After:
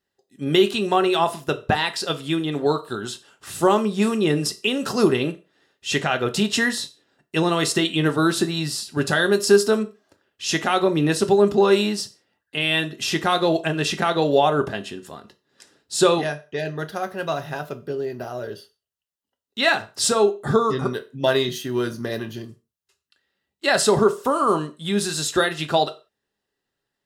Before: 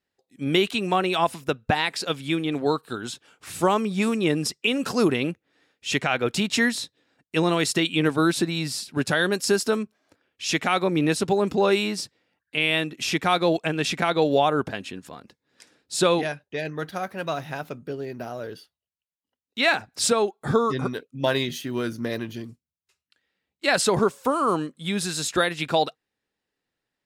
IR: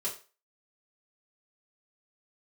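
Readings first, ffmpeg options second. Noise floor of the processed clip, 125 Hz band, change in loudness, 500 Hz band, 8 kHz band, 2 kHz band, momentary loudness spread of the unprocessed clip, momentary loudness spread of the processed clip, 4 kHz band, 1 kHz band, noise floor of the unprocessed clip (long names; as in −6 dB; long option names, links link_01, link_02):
−82 dBFS, +2.5 dB, +2.5 dB, +4.0 dB, +2.5 dB, +1.5 dB, 12 LU, 13 LU, +2.5 dB, +2.5 dB, below −85 dBFS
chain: -filter_complex "[0:a]bandreject=frequency=2300:width=5.9,asplit=2[link_01][link_02];[1:a]atrim=start_sample=2205,afade=type=out:start_time=0.25:duration=0.01,atrim=end_sample=11466[link_03];[link_02][link_03]afir=irnorm=-1:irlink=0,volume=-7dB[link_04];[link_01][link_04]amix=inputs=2:normalize=0"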